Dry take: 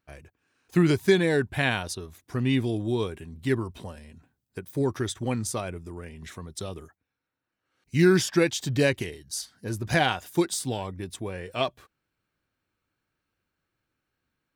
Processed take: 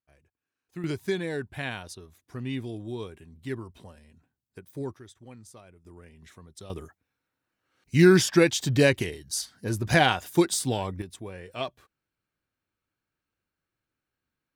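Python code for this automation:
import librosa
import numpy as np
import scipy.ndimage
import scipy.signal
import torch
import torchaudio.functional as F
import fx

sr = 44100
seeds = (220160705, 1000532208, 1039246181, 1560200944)

y = fx.gain(x, sr, db=fx.steps((0.0, -17.0), (0.84, -8.5), (4.94, -19.0), (5.85, -10.0), (6.7, 2.5), (11.02, -5.5)))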